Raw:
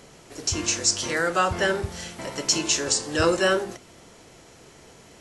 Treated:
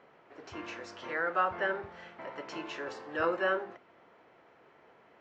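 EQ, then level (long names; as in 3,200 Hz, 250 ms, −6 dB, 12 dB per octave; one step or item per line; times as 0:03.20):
resonant band-pass 1,300 Hz, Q 0.56
low-pass filter 2,000 Hz 12 dB per octave
−5.0 dB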